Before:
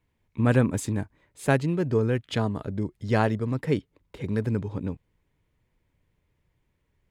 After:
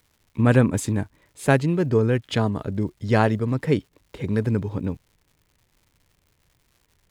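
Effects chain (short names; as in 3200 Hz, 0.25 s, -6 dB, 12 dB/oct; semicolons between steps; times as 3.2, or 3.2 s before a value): crackle 230/s -53 dBFS; gain +4 dB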